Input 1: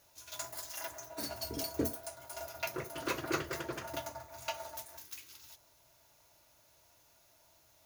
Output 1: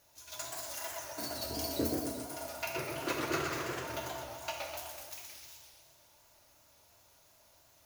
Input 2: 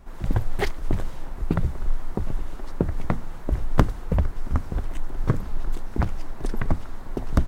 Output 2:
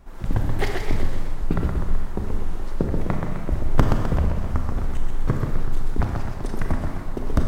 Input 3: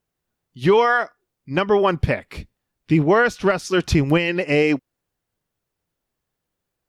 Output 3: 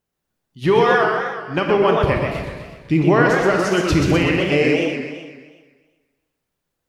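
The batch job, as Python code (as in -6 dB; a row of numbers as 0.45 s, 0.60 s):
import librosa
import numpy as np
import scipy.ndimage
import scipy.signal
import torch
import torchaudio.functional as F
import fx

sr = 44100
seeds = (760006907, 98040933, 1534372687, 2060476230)

y = fx.rev_schroeder(x, sr, rt60_s=1.2, comb_ms=28, drr_db=3.5)
y = fx.echo_warbled(y, sr, ms=126, feedback_pct=54, rate_hz=2.8, cents=215, wet_db=-4.5)
y = y * librosa.db_to_amplitude(-1.0)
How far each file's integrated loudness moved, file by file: +2.0 LU, +2.0 LU, +1.5 LU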